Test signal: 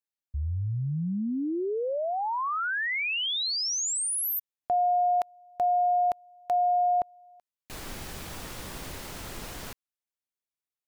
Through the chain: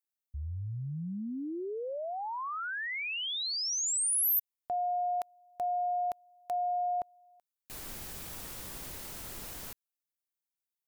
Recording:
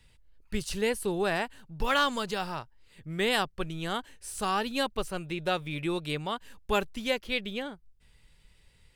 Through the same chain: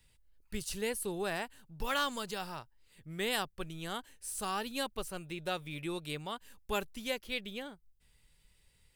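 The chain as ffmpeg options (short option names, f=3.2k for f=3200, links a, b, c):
-af "highshelf=f=7.7k:g=12,volume=-7.5dB"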